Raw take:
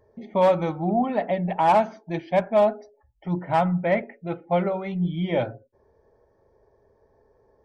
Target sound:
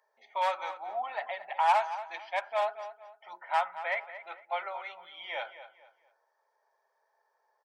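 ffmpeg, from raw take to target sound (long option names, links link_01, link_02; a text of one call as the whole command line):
ffmpeg -i in.wav -filter_complex "[0:a]highpass=frequency=870:width=0.5412,highpass=frequency=870:width=1.3066,bandreject=frequency=1100:width=19,asplit=2[link_01][link_02];[link_02]adelay=228,lowpass=frequency=3700:poles=1,volume=-12.5dB,asplit=2[link_03][link_04];[link_04]adelay=228,lowpass=frequency=3700:poles=1,volume=0.33,asplit=2[link_05][link_06];[link_06]adelay=228,lowpass=frequency=3700:poles=1,volume=0.33[link_07];[link_03][link_05][link_07]amix=inputs=3:normalize=0[link_08];[link_01][link_08]amix=inputs=2:normalize=0,volume=-1.5dB" out.wav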